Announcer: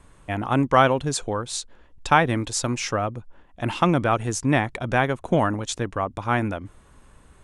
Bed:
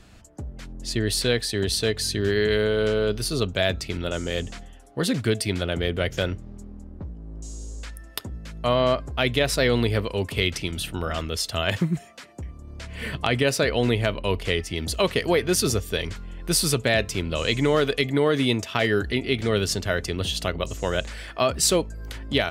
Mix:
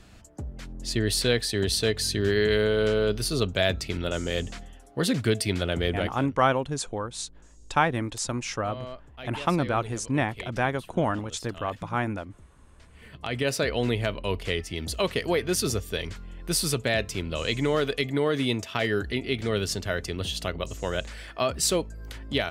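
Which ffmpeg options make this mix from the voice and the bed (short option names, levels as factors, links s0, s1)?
-filter_complex "[0:a]adelay=5650,volume=0.562[s0];[1:a]volume=4.73,afade=t=out:st=5.93:d=0.27:silence=0.133352,afade=t=in:st=13.09:d=0.41:silence=0.188365[s1];[s0][s1]amix=inputs=2:normalize=0"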